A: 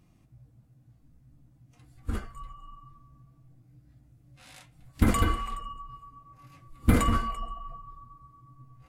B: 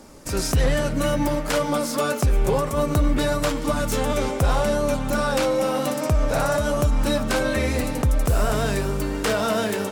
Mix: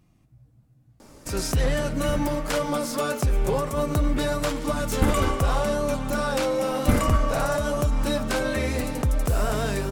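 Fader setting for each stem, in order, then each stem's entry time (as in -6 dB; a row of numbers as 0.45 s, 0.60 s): +0.5 dB, -3.0 dB; 0.00 s, 1.00 s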